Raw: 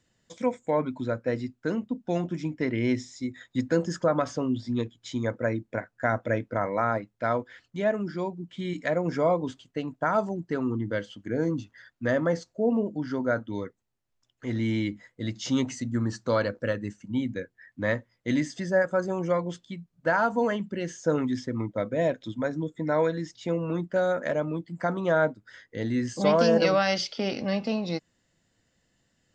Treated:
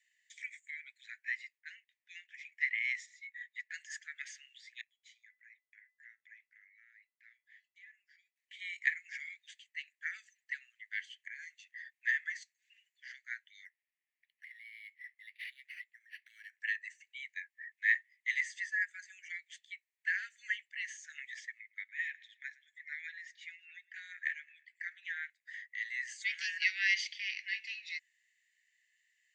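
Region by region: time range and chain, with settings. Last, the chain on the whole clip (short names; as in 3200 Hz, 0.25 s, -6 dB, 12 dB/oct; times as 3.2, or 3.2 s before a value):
1.58–2.52 LPF 3100 Hz 6 dB/oct + low-pass opened by the level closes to 1900 Hz, open at -27 dBFS
3.06–3.74 LPF 1700 Hz 6 dB/oct + comb 4.1 ms, depth 38%
4.81–8.36 compressor 2.5:1, threshold -33 dBFS + flange 1.6 Hz, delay 0.1 ms, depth 5.7 ms, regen -81% + resonator 670 Hz, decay 0.29 s, mix 70%
13.65–16.6 compressor, threshold -37 dBFS + decimation joined by straight lines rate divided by 6×
21.59–25.3 LPF 3100 Hz 6 dB/oct + feedback echo 0.108 s, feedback 49%, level -23 dB
whole clip: steep high-pass 1800 Hz 96 dB/oct; resonant high shelf 2600 Hz -9.5 dB, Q 1.5; notch 5200 Hz, Q 8.3; gain +5 dB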